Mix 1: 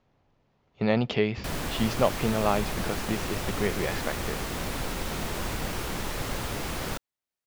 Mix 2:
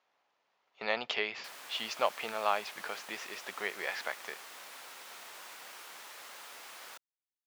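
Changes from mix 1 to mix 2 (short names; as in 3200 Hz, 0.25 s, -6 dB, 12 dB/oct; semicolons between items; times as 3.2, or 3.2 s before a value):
background -12.0 dB; master: add HPF 880 Hz 12 dB/oct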